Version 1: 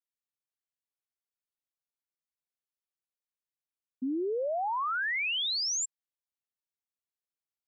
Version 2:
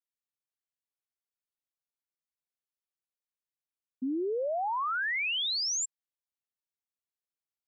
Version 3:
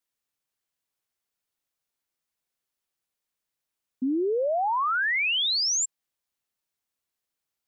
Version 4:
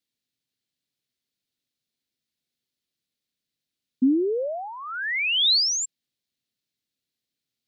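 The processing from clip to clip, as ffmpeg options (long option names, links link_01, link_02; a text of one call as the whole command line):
ffmpeg -i in.wav -af anull out.wav
ffmpeg -i in.wav -af "alimiter=level_in=7dB:limit=-24dB:level=0:latency=1,volume=-7dB,volume=9dB" out.wav
ffmpeg -i in.wav -af "equalizer=frequency=125:width_type=o:width=1:gain=10,equalizer=frequency=250:width_type=o:width=1:gain=11,equalizer=frequency=500:width_type=o:width=1:gain=3,equalizer=frequency=1000:width_type=o:width=1:gain=-10,equalizer=frequency=2000:width_type=o:width=1:gain=3,equalizer=frequency=4000:width_type=o:width=1:gain=11,volume=-4.5dB" out.wav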